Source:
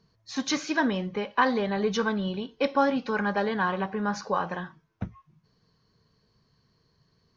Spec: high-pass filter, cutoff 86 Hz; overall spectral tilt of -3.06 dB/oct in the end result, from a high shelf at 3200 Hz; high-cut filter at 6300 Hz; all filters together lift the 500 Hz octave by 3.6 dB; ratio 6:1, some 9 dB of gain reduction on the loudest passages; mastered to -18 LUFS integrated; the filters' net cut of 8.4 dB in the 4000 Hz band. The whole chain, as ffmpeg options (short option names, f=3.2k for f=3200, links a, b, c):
-af "highpass=86,lowpass=6.3k,equalizer=f=500:t=o:g=4.5,highshelf=f=3.2k:g=-9,equalizer=f=4k:t=o:g=-4,acompressor=threshold=-27dB:ratio=6,volume=14.5dB"